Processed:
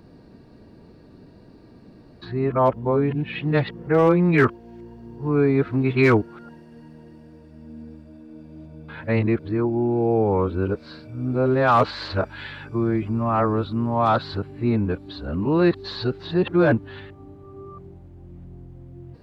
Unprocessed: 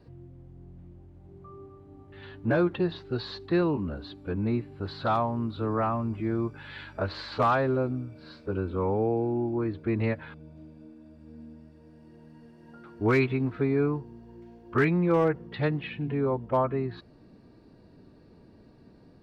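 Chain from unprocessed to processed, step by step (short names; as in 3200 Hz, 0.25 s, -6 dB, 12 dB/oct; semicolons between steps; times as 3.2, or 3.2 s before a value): whole clip reversed; gain +6.5 dB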